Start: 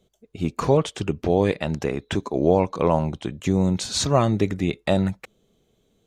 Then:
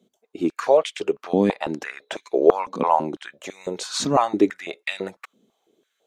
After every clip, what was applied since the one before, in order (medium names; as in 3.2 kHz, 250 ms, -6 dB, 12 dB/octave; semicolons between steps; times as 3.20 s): step-sequenced high-pass 6 Hz 230–2200 Hz; trim -2.5 dB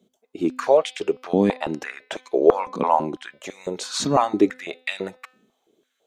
bass shelf 87 Hz +5 dB; de-hum 255.1 Hz, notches 21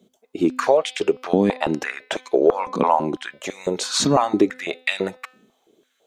compression 3:1, threshold -19 dBFS, peak gain reduction 9 dB; trim +5.5 dB